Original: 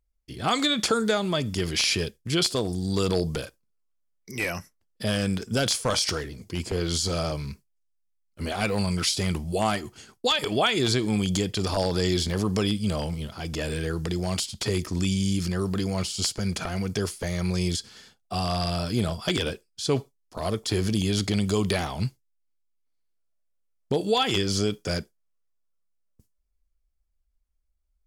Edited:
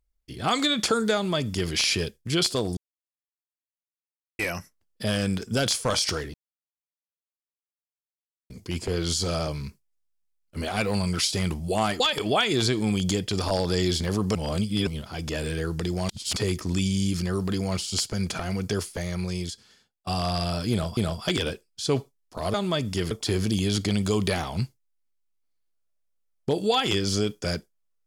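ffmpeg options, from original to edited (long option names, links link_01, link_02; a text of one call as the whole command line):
ffmpeg -i in.wav -filter_complex "[0:a]asplit=13[link_01][link_02][link_03][link_04][link_05][link_06][link_07][link_08][link_09][link_10][link_11][link_12][link_13];[link_01]atrim=end=2.77,asetpts=PTS-STARTPTS,afade=type=out:start_time=2.766:duration=0.004:curve=hsin[link_14];[link_02]atrim=start=2.77:end=4.39,asetpts=PTS-STARTPTS,volume=0[link_15];[link_03]atrim=start=4.39:end=6.34,asetpts=PTS-STARTPTS,afade=type=in:duration=0.004:curve=hsin,afade=type=out:start_time=1.946:duration=0.004:curve=hsin,apad=pad_dur=2.16[link_16];[link_04]atrim=start=6.34:end=9.842,asetpts=PTS-STARTPTS,afade=type=in:duration=0.004:curve=hsin[link_17];[link_05]atrim=start=10.258:end=12.612[link_18];[link_06]atrim=start=12.608:end=13.132,asetpts=PTS-STARTPTS,areverse[link_19];[link_07]atrim=start=13.128:end=14.352[link_20];[link_08]atrim=start=14.348:end=14.622,asetpts=PTS-STARTPTS,areverse[link_21];[link_09]atrim=start=14.618:end=18.33,asetpts=PTS-STARTPTS,afade=type=out:start_time=2.432:duration=1.28:silence=0.0944061[link_22];[link_10]atrim=start=18.33:end=19.232,asetpts=PTS-STARTPTS,afade=type=in:duration=0.004:curve=hsin:silence=0.0944061[link_23];[link_11]atrim=start=18.968:end=20.542[link_24];[link_12]atrim=start=1.148:end=1.722[link_25];[link_13]atrim=start=20.538[link_26];[link_14][link_15][link_16][link_17]concat=n=4:v=0:a=1[link_27];[link_27][link_18]acrossfade=duration=0.004:curve1=hsin:curve2=hsin[link_28];[link_28][link_19]acrossfade=duration=0.004:curve1=hsin:curve2=hsin[link_29];[link_29][link_20]acrossfade=duration=0.004:curve1=hsin:curve2=hsin[link_30];[link_30][link_21]acrossfade=duration=0.004:curve1=hsin:curve2=hsin[link_31];[link_22][link_23]concat=n=2:v=0:a=1[link_32];[link_31][link_32]acrossfade=duration=0.004:curve1=hsin:curve2=hsin[link_33];[link_33][link_24]acrossfade=duration=0.004:curve1=hsin:curve2=hsin[link_34];[link_34][link_25]acrossfade=duration=0.004:curve1=hsin:curve2=hsin[link_35];[link_35][link_26]acrossfade=duration=0.004:curve1=hsin:curve2=hsin" out.wav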